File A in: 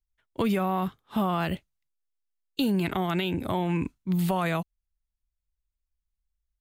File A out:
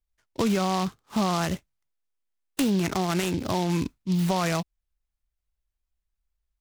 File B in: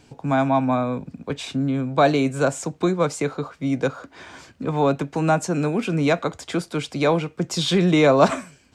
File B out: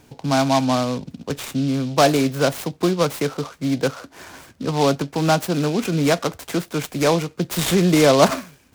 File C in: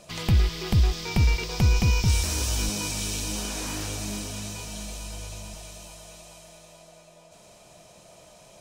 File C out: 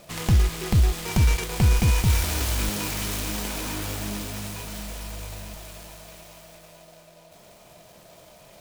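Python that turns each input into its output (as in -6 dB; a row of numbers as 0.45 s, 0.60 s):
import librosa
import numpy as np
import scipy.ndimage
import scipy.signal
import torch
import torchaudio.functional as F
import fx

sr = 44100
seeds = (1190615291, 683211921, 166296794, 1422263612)

y = fx.noise_mod_delay(x, sr, seeds[0], noise_hz=3700.0, depth_ms=0.057)
y = y * 10.0 ** (1.5 / 20.0)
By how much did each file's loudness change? +1.5 LU, +1.5 LU, +1.5 LU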